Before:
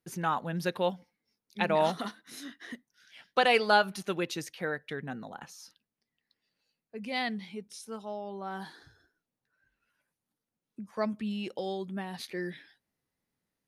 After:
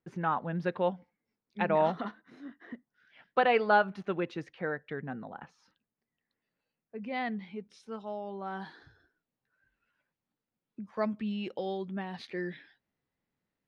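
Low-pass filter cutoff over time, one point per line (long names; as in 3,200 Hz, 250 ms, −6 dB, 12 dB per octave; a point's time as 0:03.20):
0:02.05 2,000 Hz
0:02.43 1,100 Hz
0:03.25 1,900 Hz
0:07.26 1,900 Hz
0:07.97 3,400 Hz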